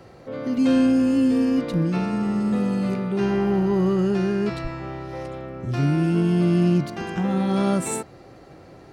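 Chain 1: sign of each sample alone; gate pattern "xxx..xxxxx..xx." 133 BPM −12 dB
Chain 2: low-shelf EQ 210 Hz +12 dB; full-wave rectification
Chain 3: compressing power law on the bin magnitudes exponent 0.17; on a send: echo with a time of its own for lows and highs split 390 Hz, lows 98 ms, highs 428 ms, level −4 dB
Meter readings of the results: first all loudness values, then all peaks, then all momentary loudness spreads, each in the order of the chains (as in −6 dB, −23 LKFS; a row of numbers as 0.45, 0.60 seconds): −24.0, −22.5, −18.0 LKFS; −22.0, −5.0, −2.5 dBFS; 3, 13, 11 LU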